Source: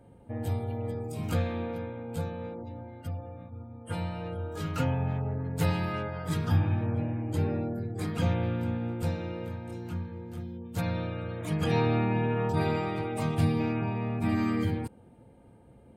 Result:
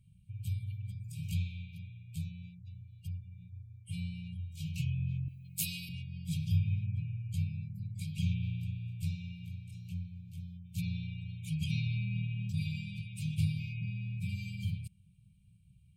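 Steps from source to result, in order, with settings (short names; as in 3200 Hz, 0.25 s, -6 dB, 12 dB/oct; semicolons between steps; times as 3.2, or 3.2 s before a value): FFT band-reject 200–2200 Hz; 5.28–5.89 RIAA curve recording; gain -4 dB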